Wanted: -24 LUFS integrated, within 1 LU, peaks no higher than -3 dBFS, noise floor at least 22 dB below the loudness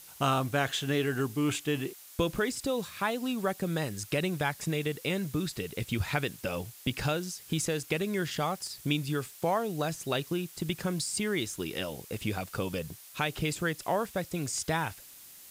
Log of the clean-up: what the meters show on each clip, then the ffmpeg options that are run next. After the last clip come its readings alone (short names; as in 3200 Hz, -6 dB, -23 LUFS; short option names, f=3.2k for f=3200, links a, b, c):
noise floor -51 dBFS; noise floor target -54 dBFS; loudness -32.0 LUFS; peak -13.5 dBFS; loudness target -24.0 LUFS
-> -af "afftdn=nr=6:nf=-51"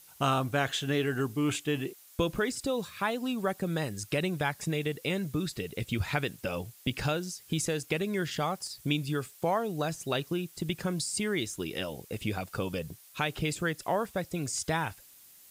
noise floor -55 dBFS; loudness -32.0 LUFS; peak -13.5 dBFS; loudness target -24.0 LUFS
-> -af "volume=8dB"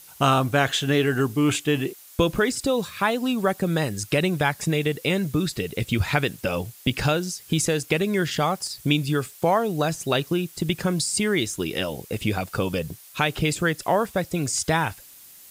loudness -24.0 LUFS; peak -5.5 dBFS; noise floor -47 dBFS